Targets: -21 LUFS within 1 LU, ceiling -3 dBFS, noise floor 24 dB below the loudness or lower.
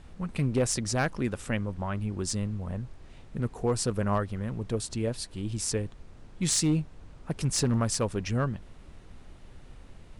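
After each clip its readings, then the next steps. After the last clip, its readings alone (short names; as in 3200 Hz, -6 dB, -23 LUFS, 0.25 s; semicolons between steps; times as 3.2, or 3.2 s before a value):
clipped 0.3%; flat tops at -18.5 dBFS; noise floor -50 dBFS; noise floor target -54 dBFS; loudness -30.0 LUFS; peak -18.5 dBFS; loudness target -21.0 LUFS
-> clip repair -18.5 dBFS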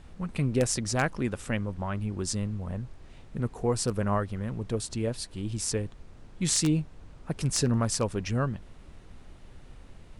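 clipped 0.0%; noise floor -50 dBFS; noise floor target -54 dBFS
-> noise print and reduce 6 dB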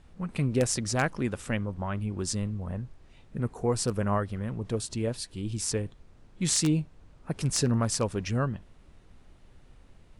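noise floor -56 dBFS; loudness -29.5 LUFS; peak -9.5 dBFS; loudness target -21.0 LUFS
-> gain +8.5 dB; limiter -3 dBFS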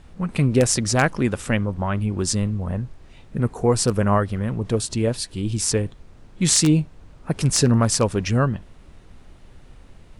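loudness -21.5 LUFS; peak -3.0 dBFS; noise floor -47 dBFS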